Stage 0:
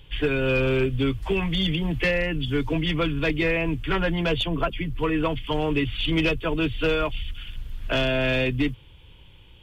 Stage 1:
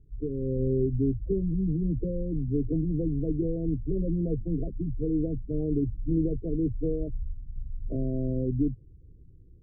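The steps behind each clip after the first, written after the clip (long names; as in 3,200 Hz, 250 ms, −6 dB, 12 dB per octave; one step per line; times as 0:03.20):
inverse Chebyshev low-pass filter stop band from 1,100 Hz, stop band 50 dB
gate on every frequency bin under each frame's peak −30 dB strong
automatic gain control gain up to 5 dB
level −6.5 dB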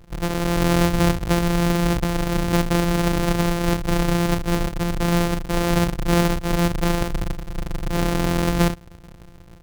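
samples sorted by size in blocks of 256 samples
level +7.5 dB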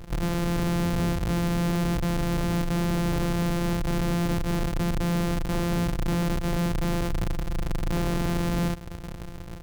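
in parallel at +1.5 dB: downward compressor, threshold −26 dBFS, peak gain reduction 12 dB
on the sum: soft clipping −23 dBFS, distortion −7 dB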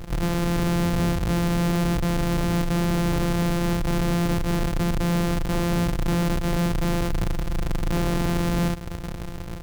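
in parallel at −1.5 dB: brickwall limiter −31 dBFS, peak gain reduction 8 dB
on the sum: log-companded quantiser 6 bits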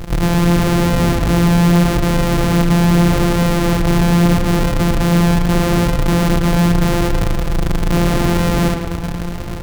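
tape delay 109 ms, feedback 65%, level −4.5 dB, low-pass 3,900 Hz
level +8.5 dB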